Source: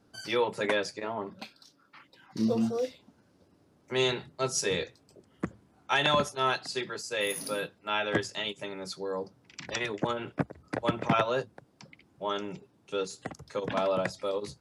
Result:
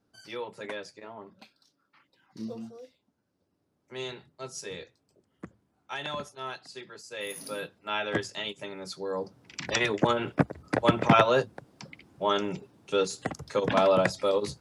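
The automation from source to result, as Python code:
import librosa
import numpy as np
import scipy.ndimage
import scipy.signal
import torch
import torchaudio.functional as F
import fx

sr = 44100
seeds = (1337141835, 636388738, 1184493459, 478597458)

y = fx.gain(x, sr, db=fx.line((2.43, -9.5), (2.82, -17.0), (4.01, -10.0), (6.85, -10.0), (7.77, -1.0), (8.85, -1.0), (9.66, 6.0)))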